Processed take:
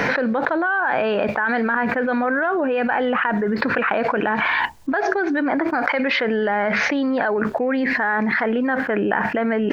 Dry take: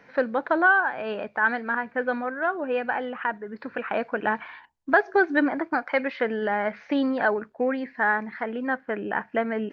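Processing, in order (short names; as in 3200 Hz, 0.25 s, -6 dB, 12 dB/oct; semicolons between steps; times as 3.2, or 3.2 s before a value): fast leveller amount 100%; gain -5.5 dB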